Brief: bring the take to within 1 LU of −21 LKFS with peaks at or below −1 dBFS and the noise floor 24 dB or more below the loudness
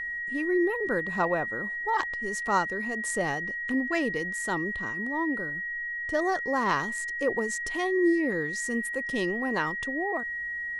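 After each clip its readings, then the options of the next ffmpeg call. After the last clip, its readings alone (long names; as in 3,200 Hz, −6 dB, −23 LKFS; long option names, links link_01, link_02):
interfering tone 1,900 Hz; level of the tone −31 dBFS; integrated loudness −28.5 LKFS; sample peak −12.0 dBFS; target loudness −21.0 LKFS
→ -af "bandreject=frequency=1900:width=30"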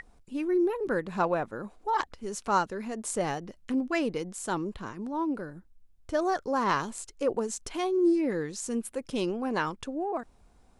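interfering tone none found; integrated loudness −30.5 LKFS; sample peak −13.0 dBFS; target loudness −21.0 LKFS
→ -af "volume=9.5dB"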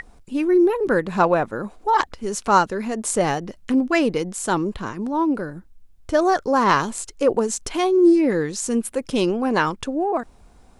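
integrated loudness −21.0 LKFS; sample peak −3.5 dBFS; background noise floor −50 dBFS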